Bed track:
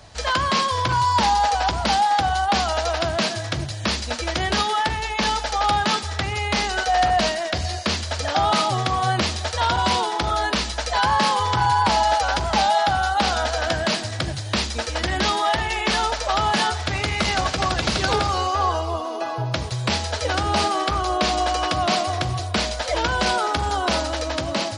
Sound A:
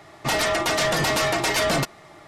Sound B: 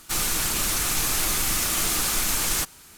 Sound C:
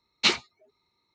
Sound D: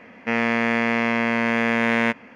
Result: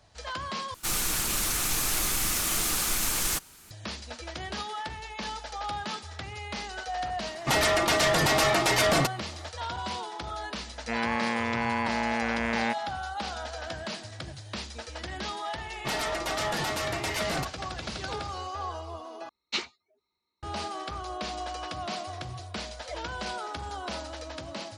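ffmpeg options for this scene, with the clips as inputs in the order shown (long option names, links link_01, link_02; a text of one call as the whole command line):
ffmpeg -i bed.wav -i cue0.wav -i cue1.wav -i cue2.wav -i cue3.wav -filter_complex "[1:a]asplit=2[link_01][link_02];[0:a]volume=-14dB[link_03];[3:a]equalizer=frequency=130:width_type=o:width=0.34:gain=-14[link_04];[link_03]asplit=3[link_05][link_06][link_07];[link_05]atrim=end=0.744[link_08];[2:a]atrim=end=2.97,asetpts=PTS-STARTPTS,volume=-3.5dB[link_09];[link_06]atrim=start=3.706:end=19.294[link_10];[link_04]atrim=end=1.14,asetpts=PTS-STARTPTS,volume=-9dB[link_11];[link_07]atrim=start=20.426[link_12];[link_01]atrim=end=2.27,asetpts=PTS-STARTPTS,volume=-1.5dB,afade=type=in:duration=0.004:curve=hsin,afade=type=out:start_time=2.266:duration=0.004:curve=hsin,adelay=318402S[link_13];[4:a]atrim=end=2.35,asetpts=PTS-STARTPTS,volume=-9dB,afade=type=in:duration=0.004:curve=hsin,afade=type=out:start_time=2.346:duration=0.004:curve=hsin,adelay=10610[link_14];[link_02]atrim=end=2.27,asetpts=PTS-STARTPTS,volume=-9.5dB,afade=type=in:duration=0.004:curve=hsin,afade=type=out:start_time=2.266:duration=0.004:curve=hsin,adelay=15600[link_15];[link_08][link_09]acrossfade=duration=0.004:curve1=hsin:curve2=hsin[link_16];[link_16][link_10]acrossfade=duration=0.004:curve1=hsin:curve2=hsin[link_17];[link_17][link_11]acrossfade=duration=0.004:curve1=hsin:curve2=hsin[link_18];[link_18][link_12]acrossfade=duration=0.004:curve1=hsin:curve2=hsin[link_19];[link_19][link_13][link_14][link_15]amix=inputs=4:normalize=0" out.wav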